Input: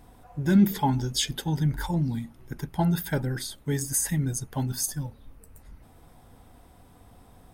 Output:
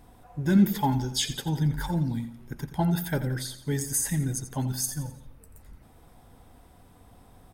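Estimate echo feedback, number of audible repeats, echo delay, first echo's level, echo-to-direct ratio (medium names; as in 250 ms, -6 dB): 42%, 3, 86 ms, -12.5 dB, -11.5 dB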